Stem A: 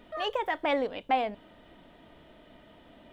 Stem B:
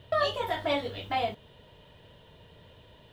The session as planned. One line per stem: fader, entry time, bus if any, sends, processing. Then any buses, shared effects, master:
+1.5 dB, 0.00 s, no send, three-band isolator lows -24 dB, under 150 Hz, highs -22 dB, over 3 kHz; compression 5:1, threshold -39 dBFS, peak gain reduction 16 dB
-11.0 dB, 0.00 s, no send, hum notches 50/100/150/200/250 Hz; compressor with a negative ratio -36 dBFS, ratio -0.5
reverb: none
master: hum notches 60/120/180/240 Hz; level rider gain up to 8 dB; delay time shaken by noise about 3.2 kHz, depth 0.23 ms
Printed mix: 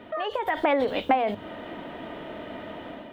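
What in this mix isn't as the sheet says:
stem A +1.5 dB -> +10.0 dB; master: missing delay time shaken by noise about 3.2 kHz, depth 0.23 ms

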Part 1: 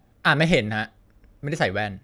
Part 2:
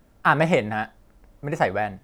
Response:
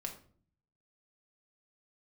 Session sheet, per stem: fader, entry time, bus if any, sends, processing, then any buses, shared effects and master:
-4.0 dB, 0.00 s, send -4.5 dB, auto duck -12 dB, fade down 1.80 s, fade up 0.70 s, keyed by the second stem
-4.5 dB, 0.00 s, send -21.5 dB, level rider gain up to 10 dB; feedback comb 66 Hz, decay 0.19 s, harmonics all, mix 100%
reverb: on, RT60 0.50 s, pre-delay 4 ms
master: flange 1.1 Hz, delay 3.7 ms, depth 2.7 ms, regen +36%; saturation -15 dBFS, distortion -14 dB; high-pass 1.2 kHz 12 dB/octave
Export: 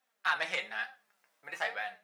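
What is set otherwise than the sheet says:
stem 1 -4.0 dB -> -13.5 dB; reverb return +9.0 dB

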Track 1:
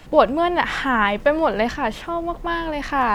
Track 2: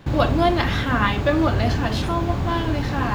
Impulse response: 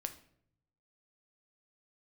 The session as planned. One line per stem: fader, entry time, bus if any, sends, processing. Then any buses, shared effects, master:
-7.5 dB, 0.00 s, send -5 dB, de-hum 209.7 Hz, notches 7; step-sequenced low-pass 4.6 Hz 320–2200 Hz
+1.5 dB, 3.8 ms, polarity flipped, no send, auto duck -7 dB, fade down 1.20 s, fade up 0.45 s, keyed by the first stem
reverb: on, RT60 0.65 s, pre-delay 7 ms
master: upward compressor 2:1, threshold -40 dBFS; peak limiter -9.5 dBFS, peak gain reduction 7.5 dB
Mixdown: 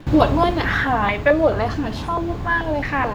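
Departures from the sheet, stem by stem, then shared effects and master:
stem 2: polarity flipped; master: missing peak limiter -9.5 dBFS, peak gain reduction 7.5 dB

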